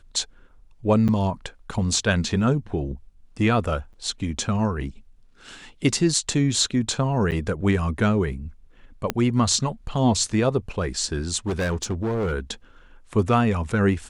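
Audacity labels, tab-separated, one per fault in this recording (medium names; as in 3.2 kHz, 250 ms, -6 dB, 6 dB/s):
1.080000	1.090000	dropout 7.9 ms
3.930000	3.940000	dropout 7.5 ms
7.310000	7.320000	dropout 8.5 ms
9.100000	9.100000	pop -8 dBFS
11.470000	12.330000	clipped -21 dBFS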